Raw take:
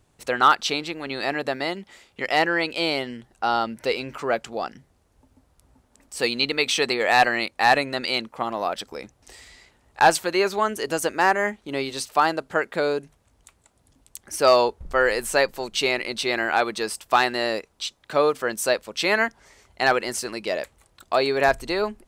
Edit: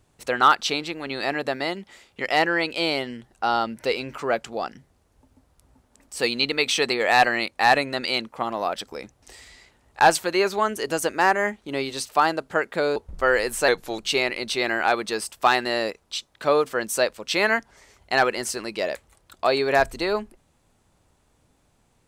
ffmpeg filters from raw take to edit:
-filter_complex "[0:a]asplit=4[a][b][c][d];[a]atrim=end=12.962[e];[b]atrim=start=14.678:end=15.404[f];[c]atrim=start=15.4:end=15.67,asetpts=PTS-STARTPTS,asetrate=39249,aresample=44100[g];[d]atrim=start=15.666[h];[e][f]acrossfade=d=0.004:c1=hsin:c2=hsin[i];[i][g]acrossfade=d=0.004:c1=hsin:c2=hsin[j];[j][h]acrossfade=d=0.004:c1=hsin:c2=hsin"

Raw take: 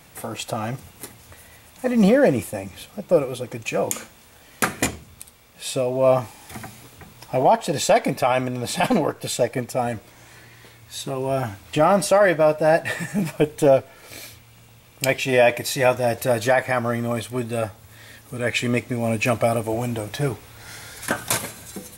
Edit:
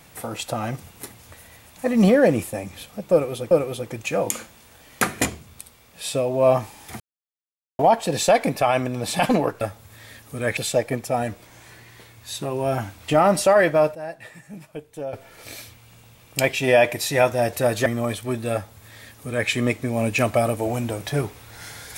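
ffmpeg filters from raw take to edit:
-filter_complex "[0:a]asplit=9[a][b][c][d][e][f][g][h][i];[a]atrim=end=3.512[j];[b]atrim=start=3.118:end=6.61,asetpts=PTS-STARTPTS,afade=t=out:st=3.488:d=0.004:c=hsin[k];[c]atrim=start=6.61:end=7.4,asetpts=PTS-STARTPTS,volume=0[l];[d]atrim=start=7.4:end=9.222,asetpts=PTS-STARTPTS,afade=t=in:d=0.004:c=hsin[m];[e]atrim=start=17.598:end=18.562[n];[f]atrim=start=9.218:end=12.6,asetpts=PTS-STARTPTS,afade=t=out:st=2.972:d=0.41:c=log:silence=0.158489[o];[g]atrim=start=12.6:end=13.78,asetpts=PTS-STARTPTS,volume=-16dB[p];[h]atrim=start=13.78:end=16.512,asetpts=PTS-STARTPTS,afade=t=in:d=0.41:c=log:silence=0.158489[q];[i]atrim=start=16.928[r];[k][l][m]concat=n=3:v=0:a=1[s];[j][s]acrossfade=d=0.004:c1=hsin:c2=hsin[t];[t][n]acrossfade=d=0.004:c1=hsin:c2=hsin[u];[o][p][q]concat=n=3:v=0:a=1[v];[u][v]acrossfade=d=0.004:c1=hsin:c2=hsin[w];[w][r]acrossfade=d=0.004:c1=hsin:c2=hsin"

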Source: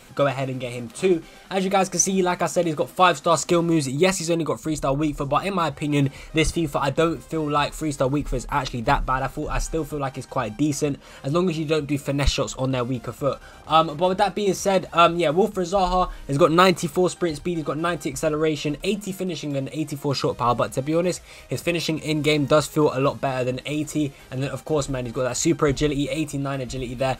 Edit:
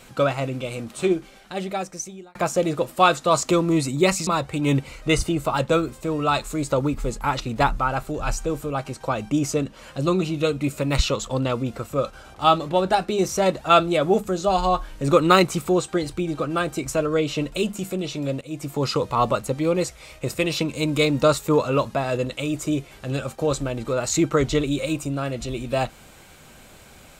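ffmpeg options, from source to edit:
-filter_complex "[0:a]asplit=4[a][b][c][d];[a]atrim=end=2.35,asetpts=PTS-STARTPTS,afade=t=out:st=0.89:d=1.46[e];[b]atrim=start=2.35:end=4.272,asetpts=PTS-STARTPTS,afade=t=in:d=0.004:c=hsin[f];[c]atrim=start=5.548:end=19.69,asetpts=PTS-STARTPTS,afade=t=out:st=14.138:d=0.004:c=hsin:silence=0.237137[g];[d]atrim=start=19.69,asetpts=PTS-STARTPTS,afade=t=in:d=0.29:silence=0.237137[h];[e][f]concat=n=2:v=0:a=1[i];[g][h]concat=n=2:v=0:a=1[j];[i][j]acrossfade=d=0.004:c1=hsin:c2=hsin"

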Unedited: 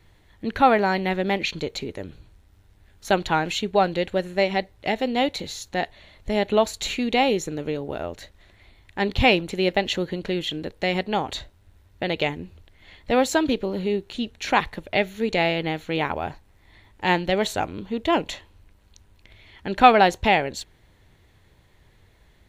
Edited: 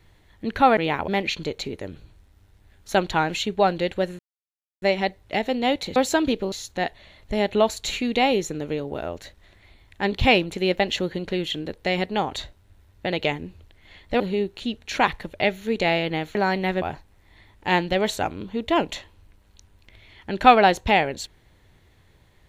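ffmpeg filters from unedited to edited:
-filter_complex "[0:a]asplit=9[a][b][c][d][e][f][g][h][i];[a]atrim=end=0.772[j];[b]atrim=start=15.878:end=16.192[k];[c]atrim=start=1.238:end=4.35,asetpts=PTS-STARTPTS,afade=t=out:st=3.108:d=0.004:c=hsin,apad=pad_dur=0.63[l];[d]atrim=start=4.35:end=5.492,asetpts=PTS-STARTPTS,afade=t=in:d=0.004:c=hsin[m];[e]atrim=start=13.168:end=13.732[n];[f]atrim=start=5.488:end=13.172[o];[g]atrim=start=13.728:end=15.882[p];[h]atrim=start=0.768:end=1.242[q];[i]atrim=start=16.188[r];[j][k]acrossfade=d=0.004:c1=hsin:c2=hsin[s];[l][m]concat=n=2:v=0:a=1[t];[s][t]acrossfade=d=0.004:c1=hsin:c2=hsin[u];[u][n]acrossfade=d=0.004:c1=hsin:c2=hsin[v];[v][o]acrossfade=d=0.004:c1=hsin:c2=hsin[w];[w][p]acrossfade=d=0.004:c1=hsin:c2=hsin[x];[x][q]acrossfade=d=0.004:c1=hsin:c2=hsin[y];[y][r]acrossfade=d=0.004:c1=hsin:c2=hsin"

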